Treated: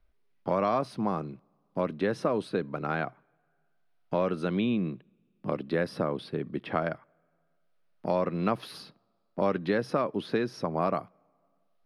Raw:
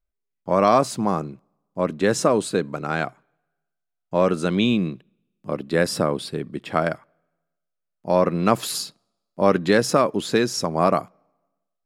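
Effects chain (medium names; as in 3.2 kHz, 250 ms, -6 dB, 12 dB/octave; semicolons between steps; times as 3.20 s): boxcar filter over 6 samples; three bands compressed up and down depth 70%; trim -8 dB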